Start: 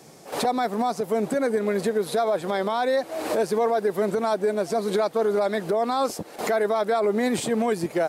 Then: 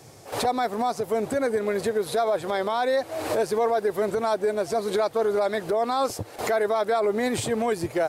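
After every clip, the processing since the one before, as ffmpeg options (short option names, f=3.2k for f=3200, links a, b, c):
-af "lowshelf=f=140:t=q:w=3:g=7.5"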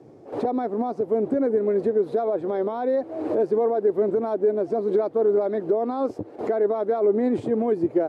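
-af "bandpass=f=310:t=q:w=1.9:csg=0,volume=8dB"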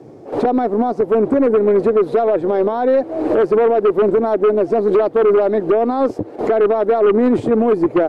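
-af "aeval=exprs='0.282*(cos(1*acos(clip(val(0)/0.282,-1,1)))-cos(1*PI/2))+0.0708*(cos(5*acos(clip(val(0)/0.282,-1,1)))-cos(5*PI/2))+0.0316*(cos(7*acos(clip(val(0)/0.282,-1,1)))-cos(7*PI/2))+0.00562*(cos(8*acos(clip(val(0)/0.282,-1,1)))-cos(8*PI/2))':c=same,volume=5.5dB"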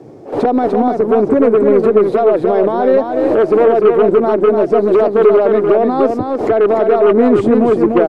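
-af "aecho=1:1:297:0.562,volume=2.5dB"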